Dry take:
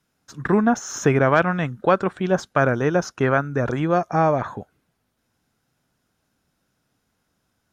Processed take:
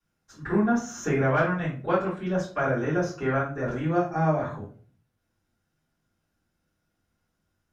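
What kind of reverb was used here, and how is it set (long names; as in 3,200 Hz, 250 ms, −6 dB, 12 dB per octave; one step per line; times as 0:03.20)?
rectangular room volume 30 cubic metres, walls mixed, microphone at 2.2 metres
level −19.5 dB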